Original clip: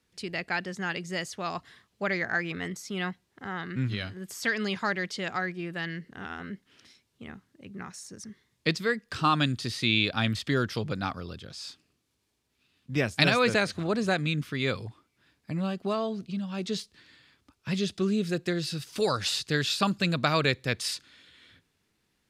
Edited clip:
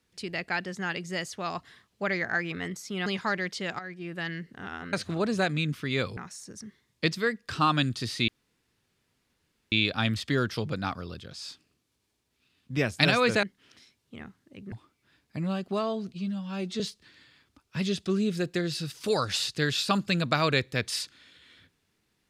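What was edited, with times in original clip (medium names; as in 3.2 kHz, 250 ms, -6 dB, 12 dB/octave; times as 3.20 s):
3.06–4.64 s: delete
5.37–5.76 s: fade in, from -13.5 dB
6.51–7.80 s: swap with 13.62–14.86 s
9.91 s: insert room tone 1.44 s
16.28–16.72 s: stretch 1.5×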